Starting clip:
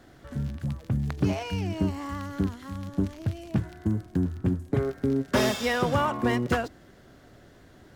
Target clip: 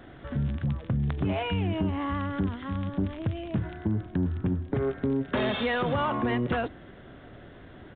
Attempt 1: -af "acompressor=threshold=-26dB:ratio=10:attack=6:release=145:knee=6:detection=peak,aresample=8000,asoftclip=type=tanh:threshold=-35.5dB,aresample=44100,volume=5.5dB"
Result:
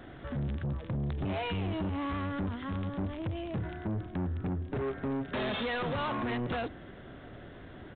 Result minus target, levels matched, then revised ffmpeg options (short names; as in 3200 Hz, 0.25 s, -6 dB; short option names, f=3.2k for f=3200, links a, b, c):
soft clip: distortion +11 dB
-af "acompressor=threshold=-26dB:ratio=10:attack=6:release=145:knee=6:detection=peak,aresample=8000,asoftclip=type=tanh:threshold=-24dB,aresample=44100,volume=5.5dB"